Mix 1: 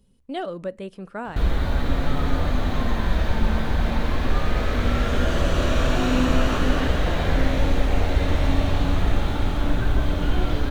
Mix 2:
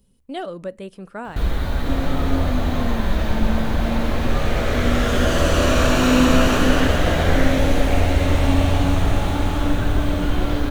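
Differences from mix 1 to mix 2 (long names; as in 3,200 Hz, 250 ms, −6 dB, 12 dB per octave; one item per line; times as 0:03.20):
second sound +7.0 dB
master: add high-shelf EQ 8,300 Hz +9 dB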